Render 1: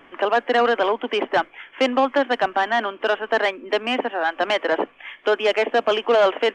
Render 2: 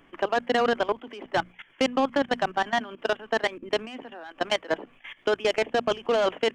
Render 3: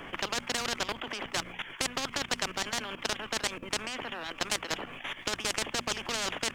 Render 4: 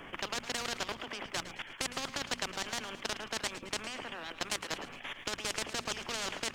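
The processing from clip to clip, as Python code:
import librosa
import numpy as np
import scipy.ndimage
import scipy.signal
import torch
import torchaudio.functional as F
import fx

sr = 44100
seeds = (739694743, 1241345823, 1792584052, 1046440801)

y1 = fx.level_steps(x, sr, step_db=19)
y1 = fx.bass_treble(y1, sr, bass_db=13, treble_db=10)
y1 = fx.hum_notches(y1, sr, base_hz=60, count=4)
y1 = y1 * librosa.db_to_amplitude(-3.5)
y2 = fx.spectral_comp(y1, sr, ratio=4.0)
y3 = fx.echo_feedback(y2, sr, ms=109, feedback_pct=47, wet_db=-13.5)
y3 = y3 * librosa.db_to_amplitude(-4.5)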